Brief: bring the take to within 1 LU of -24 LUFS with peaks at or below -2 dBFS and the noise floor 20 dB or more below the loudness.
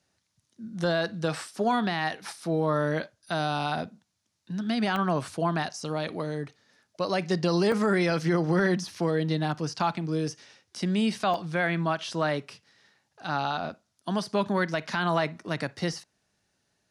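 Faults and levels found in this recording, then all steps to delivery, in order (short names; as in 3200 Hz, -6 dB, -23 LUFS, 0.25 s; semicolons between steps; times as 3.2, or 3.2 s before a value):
dropouts 4; longest dropout 1.8 ms; loudness -28.5 LUFS; peak -13.0 dBFS; loudness target -24.0 LUFS
-> interpolate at 4.96/7.72/11.34/15.93, 1.8 ms; gain +4.5 dB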